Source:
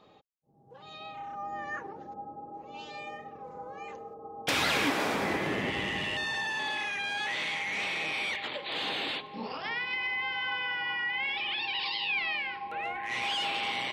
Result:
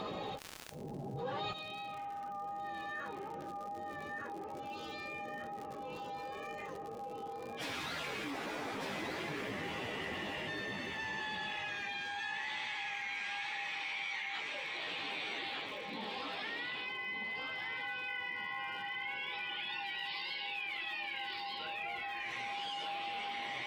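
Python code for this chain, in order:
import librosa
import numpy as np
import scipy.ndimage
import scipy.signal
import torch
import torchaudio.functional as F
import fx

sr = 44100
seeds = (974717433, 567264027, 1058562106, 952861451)

p1 = (np.mod(10.0 ** (23.0 / 20.0) * x + 1.0, 2.0) - 1.0) / 10.0 ** (23.0 / 20.0)
p2 = x + (p1 * 10.0 ** (-12.0 / 20.0))
p3 = fx.spec_box(p2, sr, start_s=6.46, length_s=2.01, low_hz=750.0, high_hz=8700.0, gain_db=10)
p4 = fx.rider(p3, sr, range_db=4, speed_s=0.5)
p5 = p4 + fx.echo_feedback(p4, sr, ms=706, feedback_pct=26, wet_db=-4, dry=0)
p6 = fx.gate_flip(p5, sr, shuts_db=-31.0, range_db=-26)
p7 = fx.stretch_vocoder_free(p6, sr, factor=1.7)
p8 = fx.dmg_crackle(p7, sr, seeds[0], per_s=120.0, level_db=-63.0)
p9 = fx.high_shelf(p8, sr, hz=8200.0, db=-8.0)
p10 = fx.env_flatten(p9, sr, amount_pct=70)
y = p10 * 10.0 ** (7.0 / 20.0)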